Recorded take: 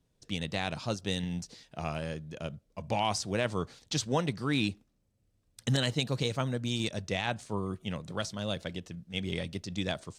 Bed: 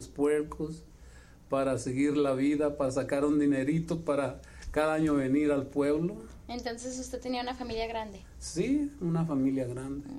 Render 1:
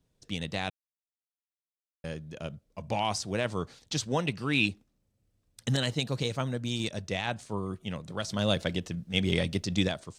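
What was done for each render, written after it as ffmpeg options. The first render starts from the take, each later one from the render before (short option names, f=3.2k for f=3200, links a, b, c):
-filter_complex "[0:a]asettb=1/sr,asplit=3[a][b][c];[a]atrim=end=4.254[d];[b]atrim=start=4.25:end=4.66,asetpts=PTS-STARTPTS,afade=t=in:d=0.004:c=qsin,afade=t=out:st=0.406:d=0.004:c=qsin,equalizer=f=2.7k:t=o:w=0.32:g=14[e];[c]atrim=start=4.656[f];[d][e]acrossfade=d=0.004:c1=hsin:c2=qsin[g];[g][f]acrossfade=d=0.004:c1=qsin:c2=hsin,asplit=3[h][i][j];[h]afade=t=out:st=8.28:d=0.02[k];[i]acontrast=87,afade=t=in:st=8.28:d=0.02,afade=t=out:st=9.87:d=0.02[l];[j]afade=t=in:st=9.87:d=0.02[m];[k][l][m]amix=inputs=3:normalize=0,asplit=3[n][o][p];[n]atrim=end=0.7,asetpts=PTS-STARTPTS,afade=t=out:st=0.696:d=0.004:c=hsin[q];[o]atrim=start=0.7:end=2.04,asetpts=PTS-STARTPTS,volume=0[r];[p]atrim=start=2.04,asetpts=PTS-STARTPTS,afade=t=in:d=0.004:c=hsin[s];[q][r][s]concat=n=3:v=0:a=1"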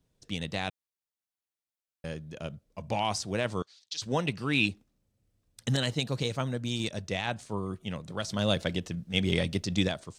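-filter_complex "[0:a]asettb=1/sr,asplit=3[a][b][c];[a]atrim=end=3.624[d];[b]atrim=start=3.62:end=4.02,asetpts=PTS-STARTPTS,afade=t=in:d=0.004:c=qsin,afade=t=out:st=0.396:d=0.004:c=qsin,bandpass=f=4.5k:t=q:w=1.7[e];[c]atrim=start=4.016[f];[d][e]acrossfade=d=0.004:c1=hsin:c2=qsin[g];[g][f]acrossfade=d=0.004:c1=qsin:c2=hsin"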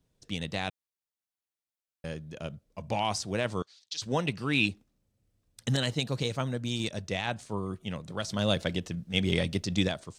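-af anull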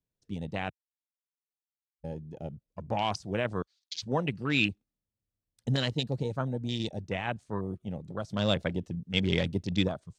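-af "afwtdn=0.0158"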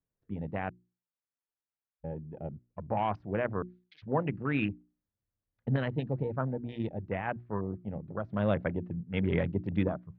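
-af "lowpass=f=2k:w=0.5412,lowpass=f=2k:w=1.3066,bandreject=f=60:t=h:w=6,bandreject=f=120:t=h:w=6,bandreject=f=180:t=h:w=6,bandreject=f=240:t=h:w=6,bandreject=f=300:t=h:w=6,bandreject=f=360:t=h:w=6"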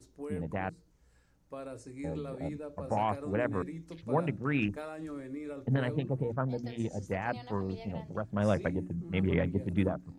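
-filter_complex "[1:a]volume=-14dB[a];[0:a][a]amix=inputs=2:normalize=0"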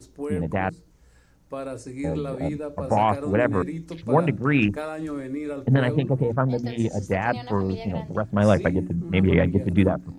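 -af "volume=10dB"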